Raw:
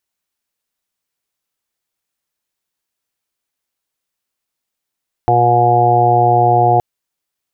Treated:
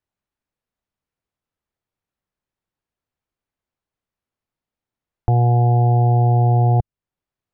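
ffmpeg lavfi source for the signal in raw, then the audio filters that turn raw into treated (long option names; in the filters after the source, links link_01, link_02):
-f lavfi -i "aevalsrc='0.15*sin(2*PI*120*t)+0.0266*sin(2*PI*240*t)+0.119*sin(2*PI*360*t)+0.106*sin(2*PI*480*t)+0.0473*sin(2*PI*600*t)+0.299*sin(2*PI*720*t)+0.141*sin(2*PI*840*t)':duration=1.52:sample_rate=44100"
-filter_complex "[0:a]lowpass=frequency=1000:poles=1,acrossover=split=160[link_01][link_02];[link_01]acontrast=80[link_03];[link_02]alimiter=limit=-15dB:level=0:latency=1:release=406[link_04];[link_03][link_04]amix=inputs=2:normalize=0"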